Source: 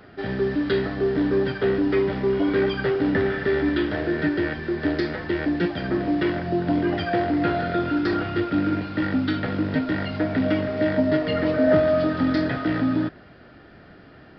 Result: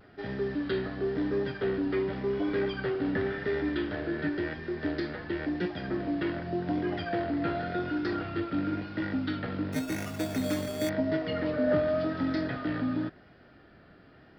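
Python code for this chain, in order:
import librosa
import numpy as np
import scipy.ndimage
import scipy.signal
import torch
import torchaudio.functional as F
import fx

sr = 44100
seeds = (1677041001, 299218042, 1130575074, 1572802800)

y = fx.sample_hold(x, sr, seeds[0], rate_hz=4000.0, jitter_pct=0, at=(9.72, 10.89))
y = fx.vibrato(y, sr, rate_hz=0.92, depth_cents=41.0)
y = F.gain(torch.from_numpy(y), -8.0).numpy()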